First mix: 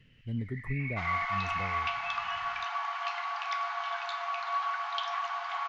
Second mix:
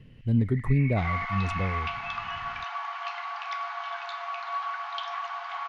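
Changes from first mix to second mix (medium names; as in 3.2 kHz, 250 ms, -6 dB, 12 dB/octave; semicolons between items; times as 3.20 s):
speech +11.0 dB; second sound: add distance through air 51 m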